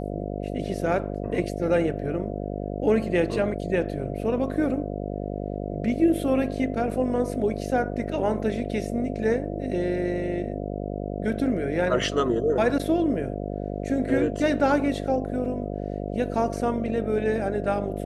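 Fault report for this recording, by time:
mains buzz 50 Hz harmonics 14 −31 dBFS

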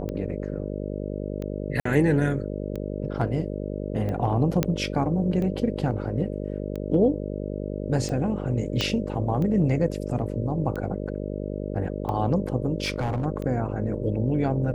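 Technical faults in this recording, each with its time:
mains buzz 50 Hz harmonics 12 −31 dBFS
scratch tick 45 rpm −21 dBFS
0:01.80–0:01.85: drop-out 54 ms
0:04.63: click −7 dBFS
0:08.81: click −11 dBFS
0:12.84–0:13.26: clipping −21.5 dBFS

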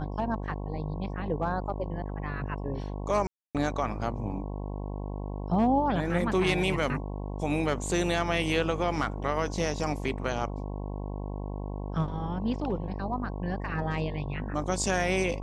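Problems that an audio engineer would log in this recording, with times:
mains buzz 50 Hz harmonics 22 −35 dBFS
0:03.27–0:03.55: drop-out 277 ms

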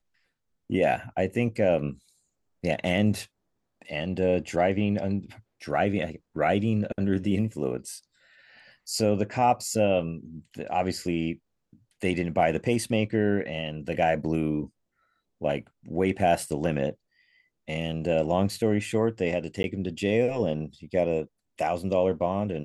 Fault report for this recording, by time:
0:19.63–0:19.64: drop-out 11 ms

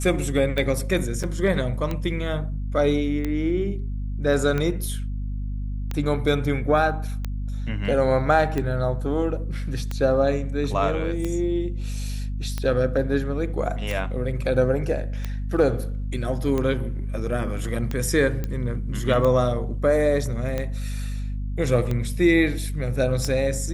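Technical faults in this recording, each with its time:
mains hum 50 Hz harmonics 5 −28 dBFS
scratch tick 45 rpm
0:01.23–0:01.24: drop-out 6.2 ms
0:18.44: click −15 dBFS

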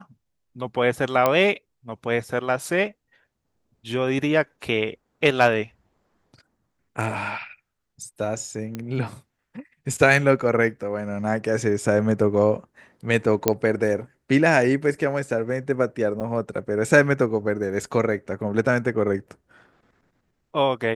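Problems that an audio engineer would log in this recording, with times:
0:01.26: click −6 dBFS
0:08.75: click −17 dBFS
0:13.48: click −3 dBFS
0:16.20–0:16.21: drop-out 7.7 ms

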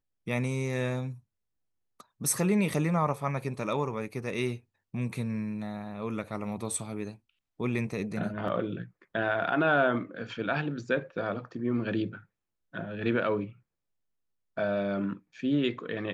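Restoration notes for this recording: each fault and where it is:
0:08.48: drop-out 2.7 ms

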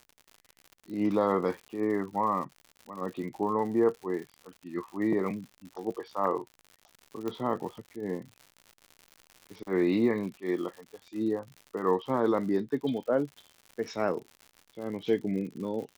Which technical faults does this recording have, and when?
surface crackle 120 per second −39 dBFS
0:07.28: click −21 dBFS

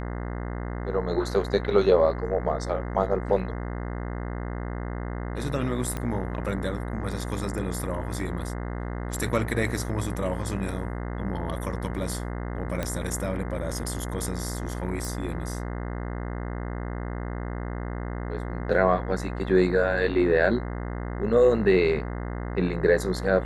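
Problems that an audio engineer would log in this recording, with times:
mains buzz 60 Hz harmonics 35 −32 dBFS
0:05.97: click −17 dBFS
0:12.83: click −14 dBFS
0:15.05: click

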